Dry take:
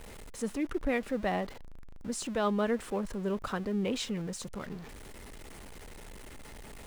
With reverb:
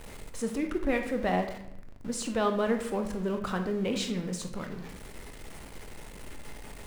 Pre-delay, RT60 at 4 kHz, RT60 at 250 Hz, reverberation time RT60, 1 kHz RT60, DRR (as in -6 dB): 22 ms, 0.55 s, 1.0 s, 0.80 s, 0.75 s, 5.0 dB